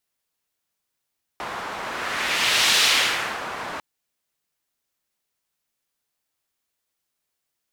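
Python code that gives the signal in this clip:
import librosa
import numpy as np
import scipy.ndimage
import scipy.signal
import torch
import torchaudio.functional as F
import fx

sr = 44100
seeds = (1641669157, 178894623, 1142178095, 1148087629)

y = fx.whoosh(sr, seeds[0], length_s=2.4, peak_s=1.41, rise_s=1.12, fall_s=0.7, ends_hz=1100.0, peak_hz=3500.0, q=1.1, swell_db=14)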